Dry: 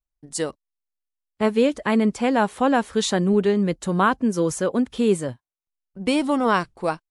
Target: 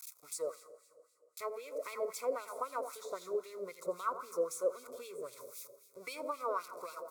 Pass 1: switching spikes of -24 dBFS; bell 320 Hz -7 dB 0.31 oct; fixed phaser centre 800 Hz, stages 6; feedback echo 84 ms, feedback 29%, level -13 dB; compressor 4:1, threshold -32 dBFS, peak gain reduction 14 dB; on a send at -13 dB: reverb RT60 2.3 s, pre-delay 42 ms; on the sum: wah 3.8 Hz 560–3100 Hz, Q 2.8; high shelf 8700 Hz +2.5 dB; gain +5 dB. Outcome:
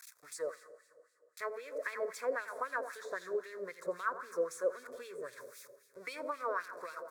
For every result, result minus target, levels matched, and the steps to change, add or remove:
2000 Hz band +9.0 dB; 8000 Hz band -5.0 dB
add after switching spikes: Butterworth band-stop 1700 Hz, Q 2.1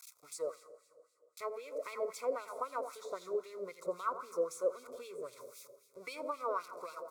8000 Hz band -4.5 dB
change: high shelf 8700 Hz +12.5 dB

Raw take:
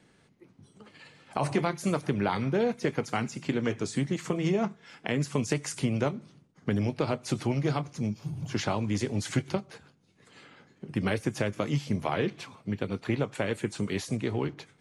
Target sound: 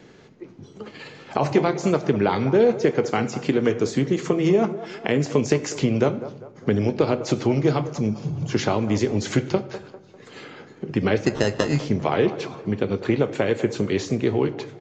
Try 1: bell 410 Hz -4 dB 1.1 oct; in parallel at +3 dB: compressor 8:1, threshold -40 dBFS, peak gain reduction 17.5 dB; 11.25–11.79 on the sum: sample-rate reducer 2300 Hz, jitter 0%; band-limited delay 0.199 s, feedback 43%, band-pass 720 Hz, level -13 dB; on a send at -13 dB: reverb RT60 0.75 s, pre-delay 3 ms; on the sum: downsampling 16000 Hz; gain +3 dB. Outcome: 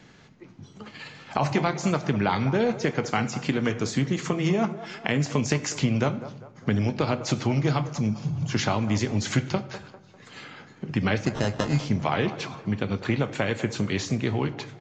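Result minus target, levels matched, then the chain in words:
500 Hz band -4.0 dB
bell 410 Hz +6.5 dB 1.1 oct; in parallel at +3 dB: compressor 8:1, threshold -40 dBFS, peak gain reduction 22 dB; 11.25–11.79 on the sum: sample-rate reducer 2300 Hz, jitter 0%; band-limited delay 0.199 s, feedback 43%, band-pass 720 Hz, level -13 dB; on a send at -13 dB: reverb RT60 0.75 s, pre-delay 3 ms; on the sum: downsampling 16000 Hz; gain +3 dB

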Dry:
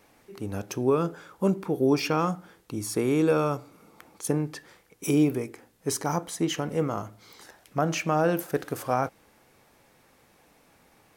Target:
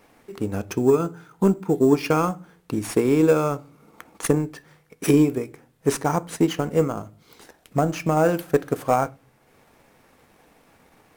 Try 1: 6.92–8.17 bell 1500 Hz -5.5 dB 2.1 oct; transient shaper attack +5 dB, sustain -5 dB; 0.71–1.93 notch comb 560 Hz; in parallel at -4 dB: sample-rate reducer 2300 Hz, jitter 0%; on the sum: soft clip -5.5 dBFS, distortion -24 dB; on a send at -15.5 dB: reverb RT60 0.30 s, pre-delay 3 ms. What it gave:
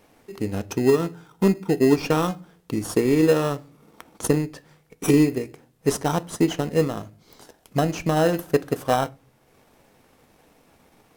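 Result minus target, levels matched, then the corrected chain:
sample-rate reducer: distortion +8 dB
6.92–8.17 bell 1500 Hz -5.5 dB 2.1 oct; transient shaper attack +5 dB, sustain -5 dB; 0.71–1.93 notch comb 560 Hz; in parallel at -4 dB: sample-rate reducer 7600 Hz, jitter 0%; on the sum: soft clip -5.5 dBFS, distortion -23 dB; on a send at -15.5 dB: reverb RT60 0.30 s, pre-delay 3 ms

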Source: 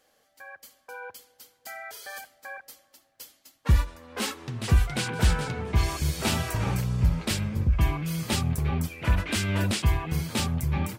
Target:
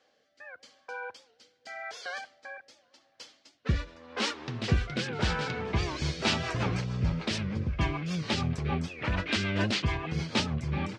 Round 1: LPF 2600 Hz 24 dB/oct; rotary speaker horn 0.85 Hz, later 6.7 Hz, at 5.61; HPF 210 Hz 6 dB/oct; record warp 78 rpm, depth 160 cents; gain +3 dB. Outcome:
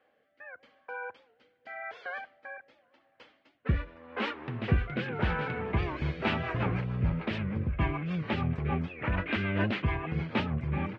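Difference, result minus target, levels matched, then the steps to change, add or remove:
4000 Hz band -8.5 dB
change: LPF 5600 Hz 24 dB/oct

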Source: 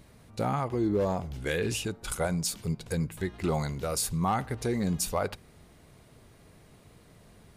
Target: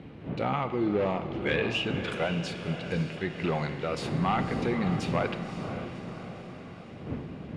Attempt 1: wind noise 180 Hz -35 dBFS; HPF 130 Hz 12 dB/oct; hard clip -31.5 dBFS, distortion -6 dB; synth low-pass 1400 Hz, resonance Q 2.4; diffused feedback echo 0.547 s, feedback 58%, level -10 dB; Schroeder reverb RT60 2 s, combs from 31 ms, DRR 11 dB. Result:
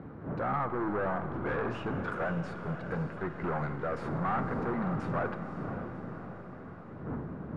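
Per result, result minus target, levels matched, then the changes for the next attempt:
hard clip: distortion +15 dB; 1000 Hz band +3.0 dB
change: hard clip -20.5 dBFS, distortion -22 dB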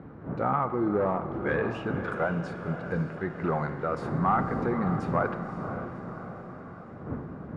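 1000 Hz band +3.0 dB
change: synth low-pass 2800 Hz, resonance Q 2.4

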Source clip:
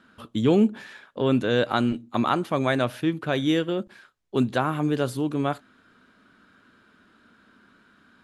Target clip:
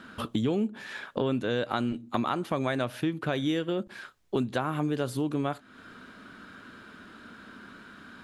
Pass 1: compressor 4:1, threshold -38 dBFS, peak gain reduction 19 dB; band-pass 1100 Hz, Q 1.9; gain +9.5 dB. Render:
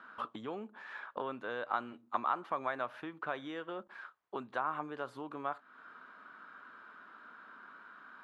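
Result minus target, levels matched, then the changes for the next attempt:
1000 Hz band +7.0 dB
remove: band-pass 1100 Hz, Q 1.9

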